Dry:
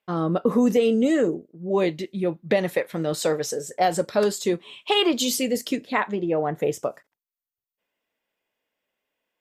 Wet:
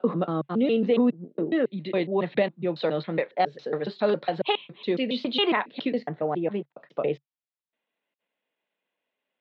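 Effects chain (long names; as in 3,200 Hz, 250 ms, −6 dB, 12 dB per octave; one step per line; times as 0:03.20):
slices reordered back to front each 138 ms, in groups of 4
Chebyshev band-pass filter 140–4,100 Hz, order 5
level −2 dB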